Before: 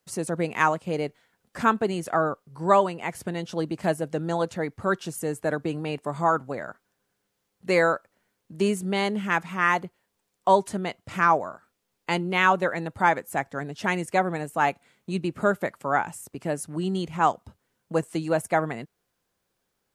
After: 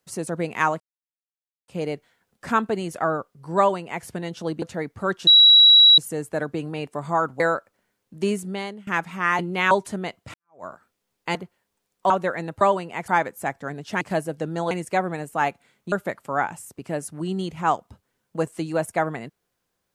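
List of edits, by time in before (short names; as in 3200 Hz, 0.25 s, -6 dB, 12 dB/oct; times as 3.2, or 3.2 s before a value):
0.8 insert silence 0.88 s
2.7–3.17 copy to 12.99
3.74–4.44 move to 13.92
5.09 add tone 3890 Hz -8.5 dBFS 0.71 s
6.51–7.78 cut
8.73–9.25 fade out, to -22 dB
9.77–10.52 swap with 12.16–12.48
11.15–11.45 fade in exponential
15.13–15.48 cut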